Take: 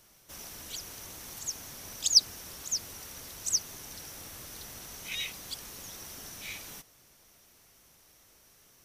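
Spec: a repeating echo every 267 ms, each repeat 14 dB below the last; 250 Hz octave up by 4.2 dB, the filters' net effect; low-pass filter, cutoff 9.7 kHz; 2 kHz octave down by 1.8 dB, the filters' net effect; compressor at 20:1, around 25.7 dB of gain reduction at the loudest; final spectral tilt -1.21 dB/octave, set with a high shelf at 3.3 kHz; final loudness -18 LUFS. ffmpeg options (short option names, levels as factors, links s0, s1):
-af "lowpass=9700,equalizer=f=250:t=o:g=5.5,equalizer=f=2000:t=o:g=-5.5,highshelf=f=3300:g=8,acompressor=threshold=0.0178:ratio=20,aecho=1:1:267|534:0.2|0.0399,volume=10.6"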